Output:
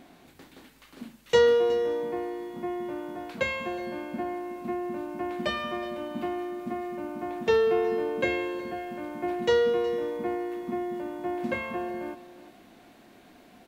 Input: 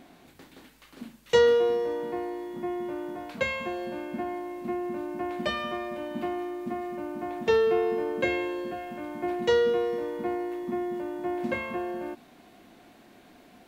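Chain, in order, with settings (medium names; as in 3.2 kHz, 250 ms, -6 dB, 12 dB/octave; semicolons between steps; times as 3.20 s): delay 368 ms -16 dB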